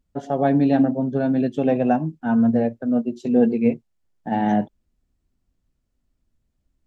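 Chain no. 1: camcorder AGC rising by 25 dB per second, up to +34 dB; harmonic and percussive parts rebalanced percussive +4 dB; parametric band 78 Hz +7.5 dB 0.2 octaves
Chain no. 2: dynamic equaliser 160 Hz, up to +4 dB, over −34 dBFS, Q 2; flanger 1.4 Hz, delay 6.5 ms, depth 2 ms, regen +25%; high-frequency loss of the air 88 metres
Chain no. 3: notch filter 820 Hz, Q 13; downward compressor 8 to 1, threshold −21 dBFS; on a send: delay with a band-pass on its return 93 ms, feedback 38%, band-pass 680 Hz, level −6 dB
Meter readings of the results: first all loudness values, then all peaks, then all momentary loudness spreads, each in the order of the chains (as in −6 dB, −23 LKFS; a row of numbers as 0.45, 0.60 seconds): −19.5, −22.5, −26.0 LKFS; −3.5, −8.5, −12.5 dBFS; 21, 11, 5 LU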